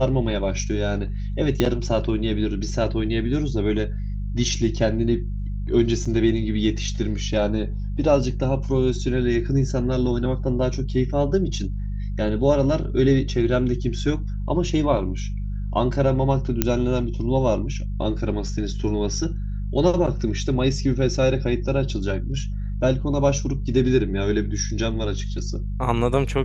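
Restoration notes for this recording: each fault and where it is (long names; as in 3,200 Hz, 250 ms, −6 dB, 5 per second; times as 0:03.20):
mains hum 50 Hz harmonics 4 −27 dBFS
0:01.60: click −6 dBFS
0:06.05–0:06.06: drop-out 5.3 ms
0:16.62: click −3 dBFS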